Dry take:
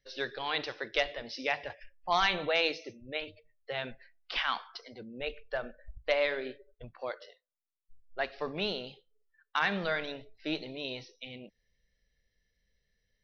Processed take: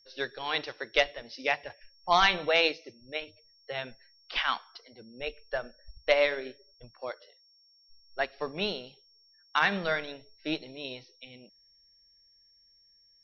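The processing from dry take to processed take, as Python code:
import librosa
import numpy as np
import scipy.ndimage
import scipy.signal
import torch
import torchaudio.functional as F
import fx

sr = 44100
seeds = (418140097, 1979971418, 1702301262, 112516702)

y = x + 10.0 ** (-55.0 / 20.0) * np.sin(2.0 * np.pi * 5500.0 * np.arange(len(x)) / sr)
y = fx.upward_expand(y, sr, threshold_db=-46.0, expansion=1.5)
y = y * librosa.db_to_amplitude(5.5)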